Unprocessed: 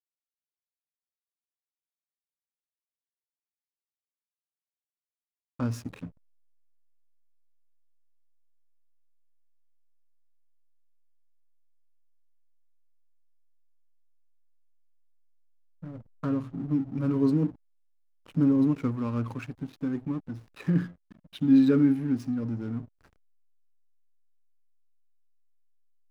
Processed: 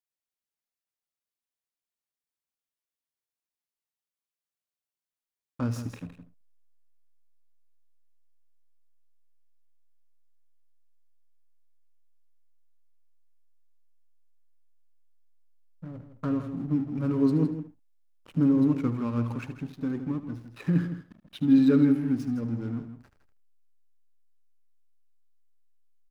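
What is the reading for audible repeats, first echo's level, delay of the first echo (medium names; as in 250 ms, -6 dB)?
3, -14.0 dB, 76 ms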